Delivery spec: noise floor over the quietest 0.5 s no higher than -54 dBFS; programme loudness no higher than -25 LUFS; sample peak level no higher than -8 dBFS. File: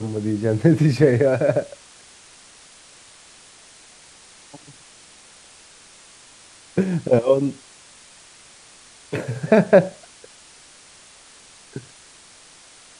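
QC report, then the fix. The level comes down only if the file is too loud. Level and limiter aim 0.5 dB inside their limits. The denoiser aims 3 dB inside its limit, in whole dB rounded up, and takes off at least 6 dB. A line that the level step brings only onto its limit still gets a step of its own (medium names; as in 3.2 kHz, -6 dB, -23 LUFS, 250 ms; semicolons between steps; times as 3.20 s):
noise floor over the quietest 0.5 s -48 dBFS: fail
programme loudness -19.5 LUFS: fail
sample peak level -2.0 dBFS: fail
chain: noise reduction 6 dB, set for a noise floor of -48 dBFS; trim -6 dB; peak limiter -8.5 dBFS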